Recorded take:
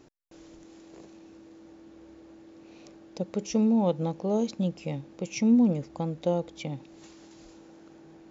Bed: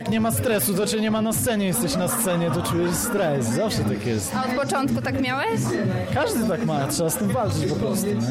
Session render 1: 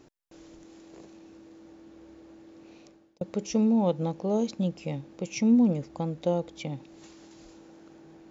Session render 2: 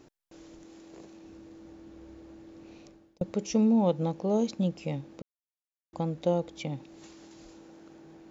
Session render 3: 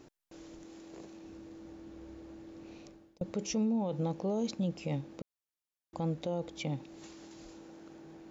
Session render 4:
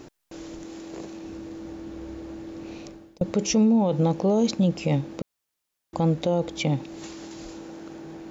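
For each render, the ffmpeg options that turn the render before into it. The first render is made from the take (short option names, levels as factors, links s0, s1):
-filter_complex "[0:a]asplit=2[s0][s1];[s0]atrim=end=3.21,asetpts=PTS-STARTPTS,afade=t=out:st=2.69:d=0.52[s2];[s1]atrim=start=3.21,asetpts=PTS-STARTPTS,afade=t=in:d=0.004:c=hsin[s3];[s2][s3]concat=n=2:v=0:a=1"
-filter_complex "[0:a]asettb=1/sr,asplit=3[s0][s1][s2];[s0]atrim=end=1.244[s3];[s1]atrim=start=1.24:end=3.33,asetpts=PTS-STARTPTS,afade=t=in:d=0.004:c=qsin,afade=t=out:st=2.086:d=0.004:c=qsin,lowshelf=f=110:g=11.5[s4];[s2]atrim=start=3.326[s5];[s3][s4]acrossfade=d=0.004:c1=hsin:c2=qsin[s6];[s6][s5]acrossfade=d=0.004:c1=qsin:c2=hsin,asplit=3[s7][s8][s9];[s7]atrim=end=5.22,asetpts=PTS-STARTPTS,afade=t=out:st=5.216:d=0.004:c=hsin[s10];[s8]atrim=start=5.22:end=5.93,asetpts=PTS-STARTPTS,volume=0[s11];[s9]atrim=start=5.93,asetpts=PTS-STARTPTS,afade=t=in:d=0.004:c=hsin[s12];[s10][s11][s12]concat=n=3:v=0:a=1"
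-af "alimiter=level_in=1.12:limit=0.0631:level=0:latency=1:release=28,volume=0.891"
-af "volume=3.76"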